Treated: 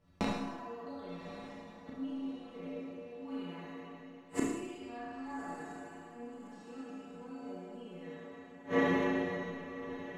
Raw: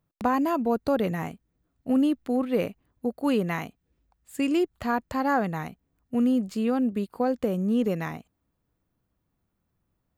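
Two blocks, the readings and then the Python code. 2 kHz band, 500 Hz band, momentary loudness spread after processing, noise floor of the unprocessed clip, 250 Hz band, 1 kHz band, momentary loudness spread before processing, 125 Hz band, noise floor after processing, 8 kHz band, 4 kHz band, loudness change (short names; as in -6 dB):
-6.0 dB, -10.5 dB, 16 LU, -78 dBFS, -13.0 dB, -12.5 dB, 11 LU, -11.5 dB, -53 dBFS, -4.5 dB, -7.5 dB, -13.0 dB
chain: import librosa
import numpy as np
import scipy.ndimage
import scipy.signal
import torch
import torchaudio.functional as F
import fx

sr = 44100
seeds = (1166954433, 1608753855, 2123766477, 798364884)

y = fx.spec_trails(x, sr, decay_s=2.82)
y = scipy.signal.sosfilt(scipy.signal.butter(2, 5500.0, 'lowpass', fs=sr, output='sos'), y)
y = fx.stiff_resonator(y, sr, f0_hz=86.0, decay_s=0.31, stiffness=0.008)
y = fx.gate_flip(y, sr, shuts_db=-34.0, range_db=-34)
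y = fx.echo_diffused(y, sr, ms=1196, feedback_pct=42, wet_db=-13.0)
y = fx.rev_schroeder(y, sr, rt60_s=0.94, comb_ms=26, drr_db=-2.5)
y = F.gain(torch.from_numpy(y), 15.0).numpy()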